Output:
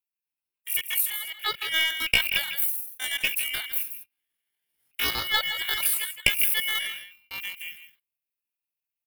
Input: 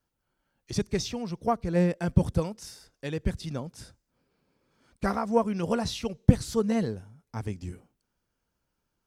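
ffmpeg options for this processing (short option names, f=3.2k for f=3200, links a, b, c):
-filter_complex "[0:a]equalizer=f=5.3k:t=o:w=0.25:g=-6,aeval=exprs='val(0)*sin(2*PI*1400*n/s)':c=same,acrossover=split=120|5300[a][b][c];[c]acontrast=58[d];[a][b][d]amix=inputs=3:normalize=0,agate=range=-16dB:threshold=-51dB:ratio=16:detection=peak,asplit=2[e][f];[f]aecho=0:1:158:0.299[g];[e][g]amix=inputs=2:normalize=0,dynaudnorm=f=550:g=7:m=11.5dB,aeval=exprs='(tanh(2.24*val(0)+0.45)-tanh(0.45))/2.24':c=same,asetrate=80880,aresample=44100,atempo=0.545254,aexciter=amount=7.1:drive=3.9:freq=9.2k"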